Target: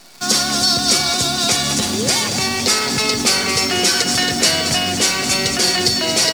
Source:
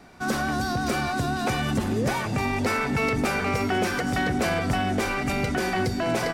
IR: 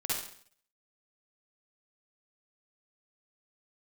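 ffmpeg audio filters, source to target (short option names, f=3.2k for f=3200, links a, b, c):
-filter_complex "[0:a]firequalizer=gain_entry='entry(480,0);entry(1700,-5);entry(4500,5)':delay=0.05:min_phase=1,asplit=2[a][b];[b]aecho=0:1:222|444|666|888:0.316|0.117|0.0433|0.016[c];[a][c]amix=inputs=2:normalize=0,crystalizer=i=9.5:c=0,lowpass=6.6k,highshelf=f=2.3k:g=-4,asetrate=42845,aresample=44100,atempo=1.0293,acrossover=split=570|1300[d][e][f];[d]highpass=f=150:p=1[g];[e]alimiter=level_in=4.5dB:limit=-24dB:level=0:latency=1,volume=-4.5dB[h];[f]aecho=1:1:7.2:0.62[i];[g][h][i]amix=inputs=3:normalize=0,acrusher=bits=7:dc=4:mix=0:aa=0.000001,volume=3.5dB"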